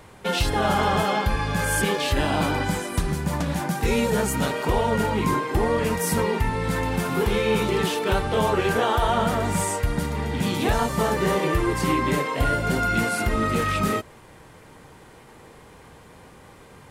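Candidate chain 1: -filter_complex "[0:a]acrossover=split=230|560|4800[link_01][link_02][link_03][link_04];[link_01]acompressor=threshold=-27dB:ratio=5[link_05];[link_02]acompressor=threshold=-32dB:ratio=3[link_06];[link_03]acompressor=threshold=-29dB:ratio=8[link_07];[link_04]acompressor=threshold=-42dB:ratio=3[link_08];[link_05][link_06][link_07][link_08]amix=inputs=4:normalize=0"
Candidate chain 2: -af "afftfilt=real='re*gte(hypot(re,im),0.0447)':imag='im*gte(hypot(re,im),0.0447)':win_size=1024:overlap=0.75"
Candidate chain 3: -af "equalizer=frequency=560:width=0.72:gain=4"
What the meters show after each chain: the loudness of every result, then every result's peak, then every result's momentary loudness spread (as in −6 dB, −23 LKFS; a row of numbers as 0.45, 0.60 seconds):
−27.5, −24.0, −21.5 LKFS; −12.5, −10.5, −7.5 dBFS; 2, 5, 5 LU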